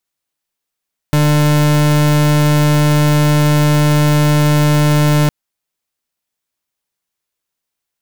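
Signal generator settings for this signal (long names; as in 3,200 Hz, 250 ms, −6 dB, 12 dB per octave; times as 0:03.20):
pulse wave 149 Hz, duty 38% −11 dBFS 4.16 s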